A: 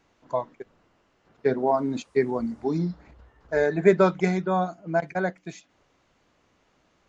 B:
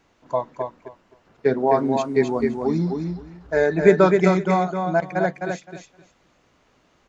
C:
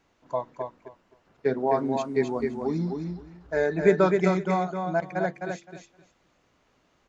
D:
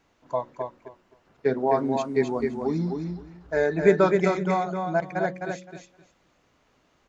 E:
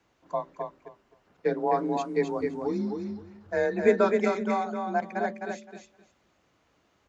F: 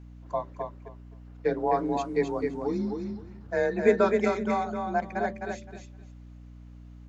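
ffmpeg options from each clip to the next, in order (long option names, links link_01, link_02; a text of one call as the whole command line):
ffmpeg -i in.wav -af "aecho=1:1:259|518|777:0.562|0.101|0.0182,volume=3.5dB" out.wav
ffmpeg -i in.wav -af "bandreject=frequency=114.1:width_type=h:width=4,bandreject=frequency=228.2:width_type=h:width=4,bandreject=frequency=342.3:width_type=h:width=4,bandreject=frequency=456.4:width_type=h:width=4,volume=-5.5dB" out.wav
ffmpeg -i in.wav -af "bandreject=frequency=183.6:width_type=h:width=4,bandreject=frequency=367.2:width_type=h:width=4,bandreject=frequency=550.8:width_type=h:width=4,volume=1.5dB" out.wav
ffmpeg -i in.wav -af "afreqshift=32,volume=-3dB" out.wav
ffmpeg -i in.wav -af "aeval=exprs='val(0)+0.00562*(sin(2*PI*60*n/s)+sin(2*PI*2*60*n/s)/2+sin(2*PI*3*60*n/s)/3+sin(2*PI*4*60*n/s)/4+sin(2*PI*5*60*n/s)/5)':channel_layout=same" out.wav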